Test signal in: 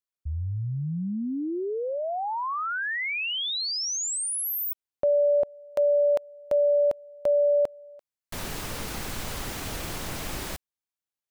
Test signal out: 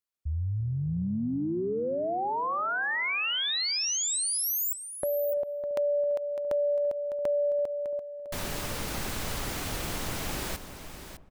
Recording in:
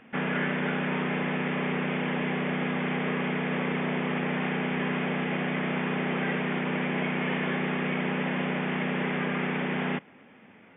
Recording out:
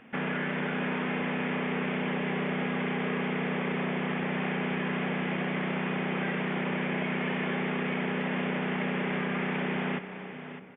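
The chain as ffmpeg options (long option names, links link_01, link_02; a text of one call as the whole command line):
ffmpeg -i in.wav -filter_complex "[0:a]asplit=2[link_01][link_02];[link_02]adelay=338,lowpass=frequency=970:poles=1,volume=-14dB,asplit=2[link_03][link_04];[link_04]adelay=338,lowpass=frequency=970:poles=1,volume=0.52,asplit=2[link_05][link_06];[link_06]adelay=338,lowpass=frequency=970:poles=1,volume=0.52,asplit=2[link_07][link_08];[link_08]adelay=338,lowpass=frequency=970:poles=1,volume=0.52,asplit=2[link_09][link_10];[link_10]adelay=338,lowpass=frequency=970:poles=1,volume=0.52[link_11];[link_03][link_05][link_07][link_09][link_11]amix=inputs=5:normalize=0[link_12];[link_01][link_12]amix=inputs=2:normalize=0,acompressor=threshold=-27dB:ratio=6:attack=5.5:release=90:knee=1:detection=rms,asplit=2[link_13][link_14];[link_14]aecho=0:1:605:0.282[link_15];[link_13][link_15]amix=inputs=2:normalize=0" out.wav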